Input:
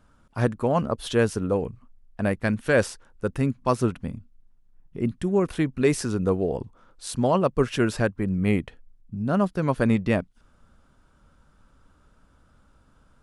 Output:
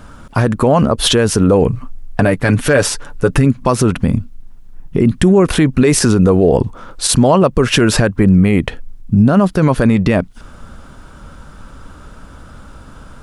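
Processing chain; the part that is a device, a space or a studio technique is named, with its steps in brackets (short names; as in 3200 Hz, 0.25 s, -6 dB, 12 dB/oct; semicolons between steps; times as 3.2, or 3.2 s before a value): 1.7–3.45 comb 6.9 ms, depth 56%; loud club master (compressor 2:1, threshold -26 dBFS, peak gain reduction 7.5 dB; hard clip -14 dBFS, distortion -37 dB; maximiser +23.5 dB); gain -1 dB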